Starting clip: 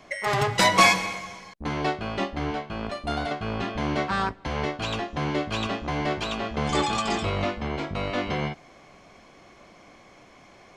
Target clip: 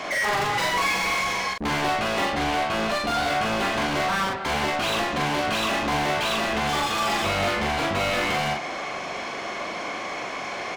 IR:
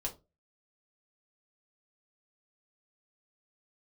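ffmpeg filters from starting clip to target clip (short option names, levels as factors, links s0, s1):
-filter_complex "[0:a]alimiter=limit=0.126:level=0:latency=1:release=208,asplit=2[s0][s1];[s1]highpass=f=720:p=1,volume=35.5,asoftclip=type=tanh:threshold=0.126[s2];[s0][s2]amix=inputs=2:normalize=0,lowpass=f=3900:p=1,volume=0.501,asplit=2[s3][s4];[s4]adelay=42,volume=0.708[s5];[s3][s5]amix=inputs=2:normalize=0,volume=0.841"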